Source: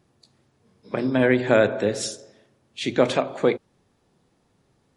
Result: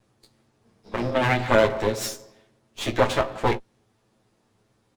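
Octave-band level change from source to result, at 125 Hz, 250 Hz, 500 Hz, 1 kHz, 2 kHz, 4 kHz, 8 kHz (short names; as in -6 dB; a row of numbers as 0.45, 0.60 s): +2.0, -5.0, -2.5, +5.0, 0.0, +0.5, -1.0 dB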